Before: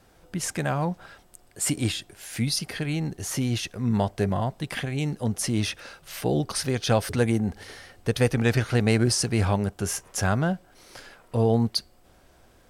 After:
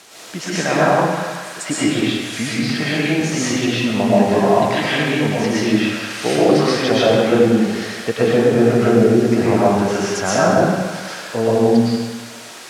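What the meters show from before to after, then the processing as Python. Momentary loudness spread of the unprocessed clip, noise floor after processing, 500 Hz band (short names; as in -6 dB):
11 LU, -35 dBFS, +13.5 dB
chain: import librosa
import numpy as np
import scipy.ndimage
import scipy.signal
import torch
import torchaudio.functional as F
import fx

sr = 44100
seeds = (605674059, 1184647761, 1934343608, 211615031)

y = fx.env_lowpass_down(x, sr, base_hz=470.0, full_db=-17.0)
y = fx.dmg_noise_colour(y, sr, seeds[0], colour='white', level_db=-48.0)
y = fx.bandpass_edges(y, sr, low_hz=240.0, high_hz=7800.0)
y = fx.echo_banded(y, sr, ms=187, feedback_pct=79, hz=1900.0, wet_db=-10.5)
y = fx.rev_freeverb(y, sr, rt60_s=1.2, hf_ratio=0.9, predelay_ms=80, drr_db=-8.0)
y = y * 10.0 ** (6.5 / 20.0)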